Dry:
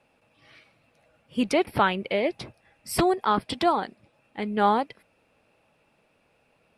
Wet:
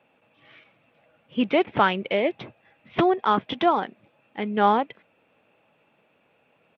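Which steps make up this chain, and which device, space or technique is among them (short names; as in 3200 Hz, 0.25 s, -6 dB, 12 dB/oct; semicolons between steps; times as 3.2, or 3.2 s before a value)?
Bluetooth headset (HPF 130 Hz 12 dB/oct; downsampling 8000 Hz; gain +2 dB; SBC 64 kbps 32000 Hz)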